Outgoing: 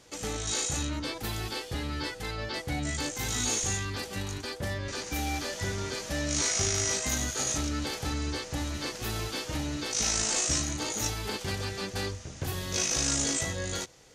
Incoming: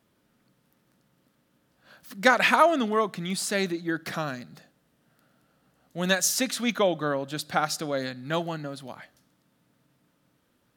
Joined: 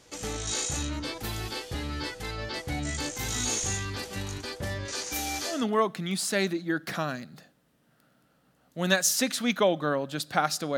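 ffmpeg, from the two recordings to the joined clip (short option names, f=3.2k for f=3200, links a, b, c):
-filter_complex "[0:a]asettb=1/sr,asplit=3[a][b][c];[a]atrim=end=4.854[d];[b]atrim=start=4.85:end=5.66,asetpts=PTS-STARTPTS,afade=t=in:d=0.004:c=qsin,afade=t=out:st=0.806:d=0.004:c=qsin,bass=f=250:g=-9,treble=f=4k:g=6[e];[c]atrim=start=5.656[f];[d][e]acrossfade=d=0.004:c1=hsin:c2=qsin[g];[g][f]acrossfade=d=0.004:c1=qsin:c2=hsin,apad=whole_dur=10.77,atrim=end=10.77,atrim=end=5.66,asetpts=PTS-STARTPTS[h];[1:a]atrim=start=2.65:end=7.96,asetpts=PTS-STARTPTS[i];[h][i]acrossfade=d=0.2:c1=tri:c2=tri"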